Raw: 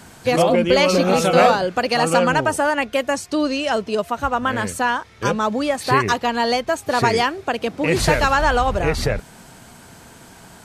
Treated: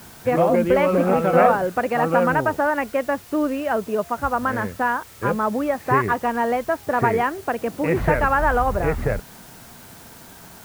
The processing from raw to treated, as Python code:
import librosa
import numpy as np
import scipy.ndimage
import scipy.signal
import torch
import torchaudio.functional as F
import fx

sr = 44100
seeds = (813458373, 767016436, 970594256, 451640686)

p1 = scipy.signal.sosfilt(scipy.signal.butter(4, 2000.0, 'lowpass', fs=sr, output='sos'), x)
p2 = fx.quant_dither(p1, sr, seeds[0], bits=6, dither='triangular')
p3 = p1 + (p2 * librosa.db_to_amplitude(-4.5))
y = p3 * librosa.db_to_amplitude(-5.5)